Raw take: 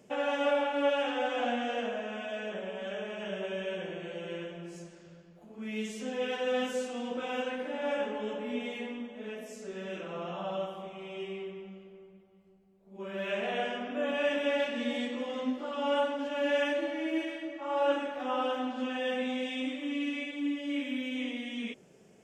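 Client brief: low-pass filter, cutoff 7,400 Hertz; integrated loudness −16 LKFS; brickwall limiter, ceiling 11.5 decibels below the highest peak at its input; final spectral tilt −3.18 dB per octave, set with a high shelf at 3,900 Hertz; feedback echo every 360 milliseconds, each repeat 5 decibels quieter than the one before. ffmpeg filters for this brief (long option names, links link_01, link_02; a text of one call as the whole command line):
ffmpeg -i in.wav -af "lowpass=7400,highshelf=frequency=3900:gain=-8.5,alimiter=level_in=4.5dB:limit=-24dB:level=0:latency=1,volume=-4.5dB,aecho=1:1:360|720|1080|1440|1800|2160|2520:0.562|0.315|0.176|0.0988|0.0553|0.031|0.0173,volume=20dB" out.wav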